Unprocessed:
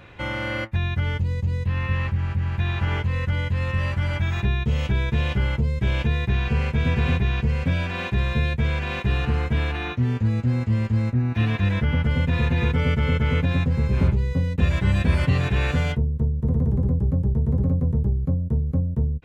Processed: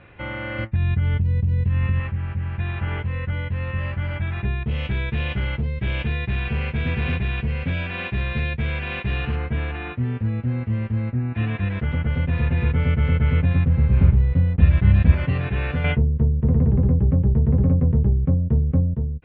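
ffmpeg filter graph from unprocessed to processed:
-filter_complex "[0:a]asettb=1/sr,asplit=3[a][b][c];[a]atrim=end=0.584[d];[b]atrim=start=0.58:end=2,asetpts=PTS-STARTPTS,afade=t=in:d=0.004:c=qsin,afade=t=out:st=1.416:d=0.004:c=qsin,bass=f=250:g=9,treble=f=4k:g=7,acompressor=threshold=-14dB:ratio=6:attack=3.2:release=140:knee=1:detection=peak[e];[c]atrim=start=1.996[f];[d][e]acrossfade=d=0.004:c1=hsin:c2=qsin[g];[g][f]acrossfade=d=0.004:c1=qsin:c2=hsin,asettb=1/sr,asplit=3[h][i][j];[h]atrim=end=4.634[k];[i]atrim=start=4.63:end=9.36,asetpts=PTS-STARTPTS,afade=t=in:d=0.004:c=qsin,afade=t=out:st=4.726:d=0.004:c=qsin,volume=16dB,asoftclip=hard,volume=-16dB,adynamicequalizer=threshold=0.00501:dfrequency=2200:dqfactor=0.7:tfrequency=2200:tqfactor=0.7:attack=5:release=100:ratio=0.375:range=4:mode=boostabove:tftype=highshelf[l];[j]atrim=start=9.356[m];[k][l]acrossfade=d=0.004:c1=hsin:c2=qsin[n];[n][m]acrossfade=d=0.004:c1=qsin:c2=hsin,asettb=1/sr,asplit=3[o][p][q];[o]atrim=end=11.654[r];[p]atrim=start=11.65:end=15.12,asetpts=PTS-STARTPTS,afade=t=in:d=0.004:c=qsin,afade=t=out:st=3.466:d=0.004:c=qsin,asubboost=boost=3:cutoff=220,aeval=exprs='sgn(val(0))*max(abs(val(0))-0.0178,0)':c=same[s];[q]atrim=start=15.116[t];[r][s]acrossfade=d=0.004:c1=hsin:c2=qsin[u];[u][t]acrossfade=d=0.004:c1=qsin:c2=hsin,asettb=1/sr,asplit=3[v][w][x];[v]atrim=end=15.844[y];[w]atrim=start=15.84:end=18.94,asetpts=PTS-STARTPTS,afade=t=in:d=0.004:c=qsin,afade=t=out:st=3.096:d=0.004:c=qsin,lowpass=f=2.8k:t=q:w=1.6,acontrast=51[z];[x]atrim=start=18.936[aa];[y][z]acrossfade=d=0.004:c1=hsin:c2=qsin[ab];[ab][aa]acrossfade=d=0.004:c1=qsin:c2=hsin,lowpass=f=3k:w=0.5412,lowpass=f=3k:w=1.3066,equalizer=f=970:w=5.7:g=-3,volume=-2dB"

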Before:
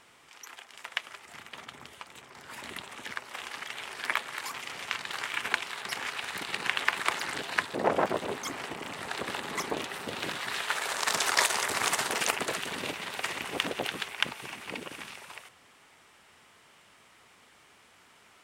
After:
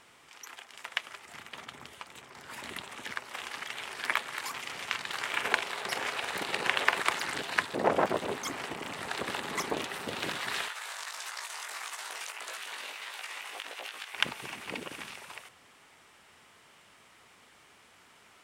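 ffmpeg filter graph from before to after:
-filter_complex "[0:a]asettb=1/sr,asplit=3[a][b][c];[a]atrim=end=5.264[d];[b]atrim=start=5.26:end=7.02,asetpts=PTS-STARTPTS,afade=t=in:d=0.004:c=qsin,afade=t=out:st=1.756:d=0.004:c=qsin,equalizer=f=530:t=o:w=1.4:g=7.5,asplit=2[e][f];[f]adelay=46,volume=-12dB[g];[e][g]amix=inputs=2:normalize=0,atrim=end_sample=77616[h];[c]atrim=start=7.016[i];[d][h]acrossfade=d=0.004:c1=hsin:c2=qsin[j];[j][i]acrossfade=d=0.004:c1=qsin:c2=hsin,asettb=1/sr,asplit=3[k][l][m];[k]atrim=end=10.684[n];[l]atrim=start=10.68:end=14.14,asetpts=PTS-STARTPTS,afade=t=in:d=0.004:c=qsin,afade=t=out:st=3.456:d=0.004:c=qsin,highpass=810,acompressor=threshold=-32dB:ratio=10:attack=3.2:release=140:knee=1:detection=peak,flanger=delay=17:depth=2.6:speed=1.6[o];[m]atrim=start=14.136[p];[n][o]acrossfade=d=0.004:c1=hsin:c2=qsin[q];[q][p]acrossfade=d=0.004:c1=qsin:c2=hsin"

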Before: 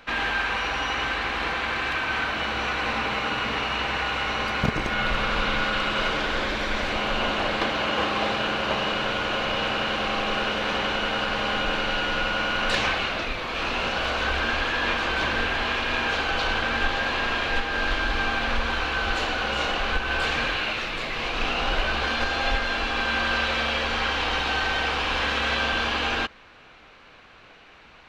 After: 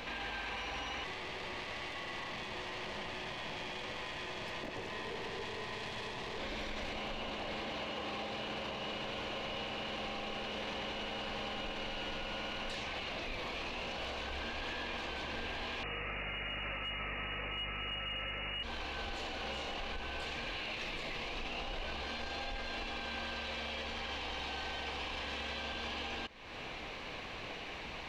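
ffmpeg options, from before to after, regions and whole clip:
-filter_complex "[0:a]asettb=1/sr,asplit=3[a][b][c];[a]atrim=end=1.044[d];[b]atrim=start=1.04:end=6.38,asetpts=PTS-STARTPTS,afade=t=in:d=0.004:c=qsin,afade=t=out:st=5.336:d=0.004:c=qsin,aeval=exprs='val(0)*sin(2*PI*430*n/s)':c=same,aeval=exprs='(tanh(12.6*val(0)+0.55)-tanh(0.55))/12.6':c=same[e];[c]atrim=start=6.376[f];[d][e]acrossfade=d=0.004:c1=hsin:c2=qsin[g];[g][f]acrossfade=d=0.004:c1=qsin:c2=hsin,asettb=1/sr,asplit=3[h][i][j];[h]atrim=end=15.834[k];[i]atrim=start=15.83:end=18.63,asetpts=PTS-STARTPTS,afade=t=in:d=0.004:c=qsin,afade=t=out:st=2.796:d=0.004:c=qsin,lowpass=f=2.5k:t=q:w=0.5098,lowpass=f=2.5k:t=q:w=0.6013,lowpass=f=2.5k:t=q:w=0.9,lowpass=f=2.5k:t=q:w=2.563,afreqshift=-2900,acontrast=45,aeval=exprs='val(0)+0.0398*(sin(2*PI*50*n/s)+sin(2*PI*2*50*n/s)/2+sin(2*PI*3*50*n/s)/3+sin(2*PI*4*50*n/s)/4+sin(2*PI*5*50*n/s)/5)':c=same[l];[j]atrim=start=18.626[m];[k][l]acrossfade=d=0.004:c1=hsin:c2=qsin[n];[n][m]acrossfade=d=0.004:c1=qsin:c2=hsin,equalizer=f=1.4k:t=o:w=0.42:g=-11,acompressor=threshold=-43dB:ratio=5,alimiter=level_in=15.5dB:limit=-24dB:level=0:latency=1:release=20,volume=-15.5dB,volume=7.5dB"

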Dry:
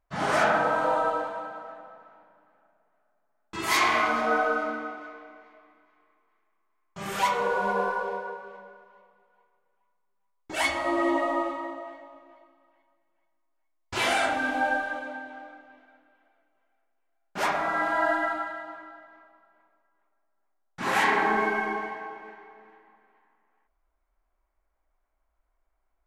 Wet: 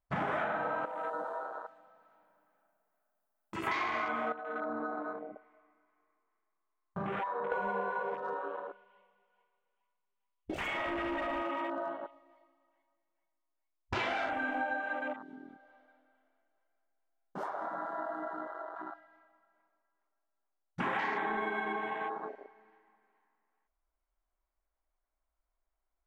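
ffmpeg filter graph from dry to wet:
-filter_complex "[0:a]asettb=1/sr,asplit=3[a][b][c];[a]atrim=end=0.854[d];[b]atrim=start=0.85:end=3.67,asetpts=PTS-STARTPTS,afade=t=in:d=0.004:c=qsin,afade=t=out:st=2.816:d=0.004:c=qsin,aemphasis=mode=production:type=50fm,acompressor=threshold=-54dB:ratio=1.5:attack=3.2:release=140:knee=1:detection=peak[e];[c]atrim=start=3.666[f];[d][e]acrossfade=d=0.004:c1=hsin:c2=qsin[g];[g][f]acrossfade=d=0.004:c1=qsin:c2=hsin,asettb=1/sr,asplit=3[h][i][j];[h]atrim=end=4.324[k];[i]atrim=start=4.32:end=7.52,asetpts=PTS-STARTPTS,afade=t=in:d=0.004:c=qsin,afade=t=out:st=3.196:d=0.004:c=qsin,lowpass=2k,acompressor=threshold=-36dB:ratio=4:attack=3.2:release=140:knee=1:detection=peak[l];[j]atrim=start=7.516[m];[k][l]acrossfade=d=0.004:c1=hsin:c2=qsin[n];[n][m]acrossfade=d=0.004:c1=qsin:c2=hsin,asettb=1/sr,asplit=3[o][p][q];[o]atrim=end=8.144[r];[p]atrim=start=8.14:end=12.11,asetpts=PTS-STARTPTS,afade=t=in:d=0.004:c=qsin,afade=t=out:st=3.966:d=0.004:c=qsin,acompressor=threshold=-35dB:ratio=3:attack=3.2:release=140:knee=1:detection=peak,lowpass=f=3k:t=q:w=4,aeval=exprs='0.0266*(abs(mod(val(0)/0.0266+3,4)-2)-1)':c=same[s];[q]atrim=start=12.106[t];[r][s]acrossfade=d=0.004:c1=hsin:c2=qsin[u];[u][t]acrossfade=d=0.004:c1=qsin:c2=hsin,asettb=1/sr,asplit=3[v][w][x];[v]atrim=end=15.134[y];[w]atrim=start=15.13:end=18.76,asetpts=PTS-STARTPTS,afade=t=in:d=0.004:c=qsin,afade=t=out:st=3.626:d=0.004:c=qsin,bandreject=f=2.5k:w=6.9,asplit=2[z][aa];[aa]adelay=196,lowpass=f=2.4k:p=1,volume=-7.5dB,asplit=2[ab][ac];[ac]adelay=196,lowpass=f=2.4k:p=1,volume=0.36,asplit=2[ad][ae];[ae]adelay=196,lowpass=f=2.4k:p=1,volume=0.36,asplit=2[af][ag];[ag]adelay=196,lowpass=f=2.4k:p=1,volume=0.36[ah];[z][ab][ad][af][ah]amix=inputs=5:normalize=0,atrim=end_sample=160083,acompressor=threshold=-47dB:ratio=2.5:attack=3.2:release=140:knee=1:detection=peak[ai];[x]atrim=start=18.756[aj];[y][ai]acrossfade=d=0.004:c1=hsin:c2=qsin[ak];[ak][aj]acrossfade=d=0.004:c1=qsin:c2=hsin,acrossover=split=3000[al][am];[am]acompressor=threshold=-43dB:ratio=4:attack=1:release=60[an];[al][an]amix=inputs=2:normalize=0,afwtdn=0.0112,acompressor=threshold=-39dB:ratio=6,volume=6.5dB"

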